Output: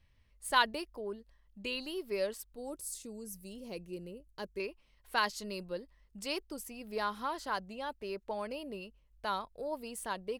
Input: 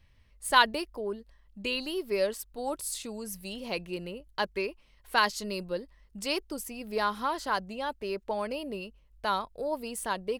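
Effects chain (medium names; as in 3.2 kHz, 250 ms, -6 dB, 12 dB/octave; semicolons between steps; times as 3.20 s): 2.56–4.60 s: high-order bell 1.7 kHz -9.5 dB 3 oct; trim -6 dB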